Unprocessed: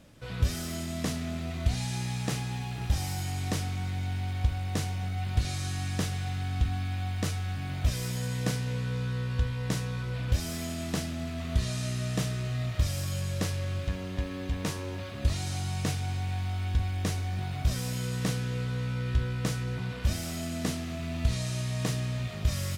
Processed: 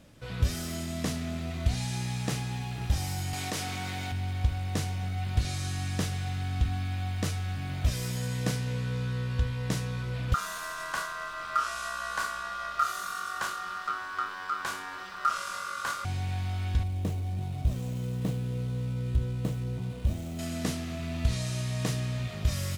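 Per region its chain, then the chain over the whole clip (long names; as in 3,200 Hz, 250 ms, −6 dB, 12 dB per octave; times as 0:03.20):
0:03.33–0:04.12: high-pass filter 400 Hz 6 dB per octave + envelope flattener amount 70%
0:10.34–0:16.05: flutter between parallel walls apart 4.7 metres, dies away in 0.29 s + ring modulation 1,300 Hz
0:16.83–0:20.39: running median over 9 samples + parametric band 1,600 Hz −12 dB 1.5 octaves
whole clip: no processing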